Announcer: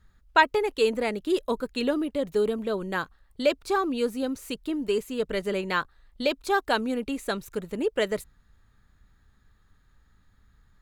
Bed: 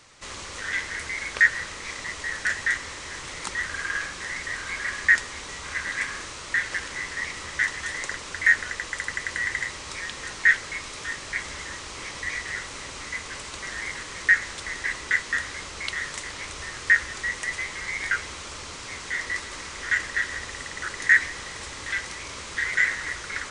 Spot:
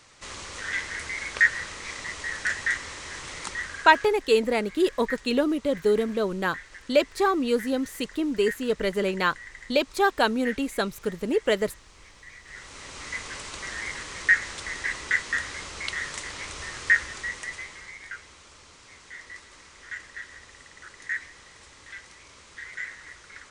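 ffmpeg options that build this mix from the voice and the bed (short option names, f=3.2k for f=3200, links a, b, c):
-filter_complex "[0:a]adelay=3500,volume=2.5dB[a];[1:a]volume=14dB,afade=t=out:st=3.38:d=0.83:silence=0.177828,afade=t=in:st=12.43:d=0.72:silence=0.16788,afade=t=out:st=16.85:d=1.14:silence=0.237137[b];[a][b]amix=inputs=2:normalize=0"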